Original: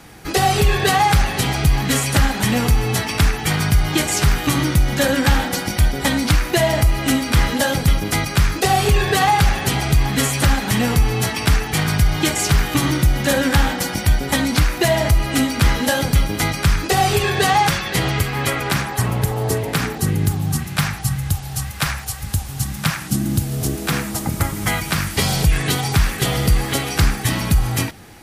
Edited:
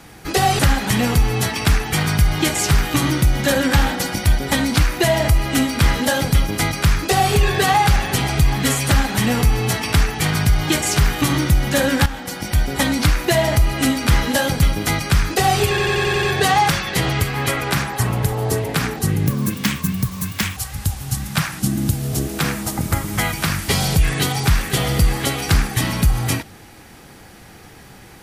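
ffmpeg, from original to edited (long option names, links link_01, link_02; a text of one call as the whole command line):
ffmpeg -i in.wav -filter_complex "[0:a]asplit=11[link_01][link_02][link_03][link_04][link_05][link_06][link_07][link_08][link_09][link_10][link_11];[link_01]atrim=end=0.592[link_12];[link_02]atrim=start=2.118:end=13.59,asetpts=PTS-STARTPTS,afade=type=out:start_time=11.468:duration=0.004:curve=hsin:silence=0.211349[link_13];[link_03]atrim=start=13.59:end=17.312,asetpts=PTS-STARTPTS,afade=type=in:duration=0.68:silence=0.211349[link_14];[link_04]atrim=start=17.218:end=17.312[link_15];[link_05]atrim=start=17.218:end=17.312[link_16];[link_06]atrim=start=17.218:end=17.312[link_17];[link_07]atrim=start=17.218:end=17.312[link_18];[link_08]atrim=start=17.218:end=17.312[link_19];[link_09]atrim=start=17.218:end=20.264[link_20];[link_10]atrim=start=20.26:end=22.05,asetpts=PTS-STARTPTS,asetrate=60858,aresample=44100,atrim=end_sample=57202,asetpts=PTS-STARTPTS[link_21];[link_11]atrim=start=22.046[link_22];[link_13][link_14]concat=n=2:v=0:a=1[link_23];[link_12][link_23]acrossfade=duration=0.004:curve1=hsin:curve2=hsin[link_24];[link_24][link_15]acrossfade=duration=0.004:curve1=hsin:curve2=hsin[link_25];[link_25][link_16]acrossfade=duration=0.004:curve1=hsin:curve2=hsin[link_26];[link_26][link_17]acrossfade=duration=0.004:curve1=hsin:curve2=hsin[link_27];[link_27][link_18]acrossfade=duration=0.004:curve1=hsin:curve2=hsin[link_28];[link_28][link_19]acrossfade=duration=0.004:curve1=hsin:curve2=hsin[link_29];[link_29][link_20]acrossfade=duration=0.004:curve1=hsin:curve2=hsin[link_30];[link_30][link_21]acrossfade=duration=0.004:curve1=hsin:curve2=hsin[link_31];[link_31][link_22]acrossfade=duration=0.004:curve1=hsin:curve2=hsin" out.wav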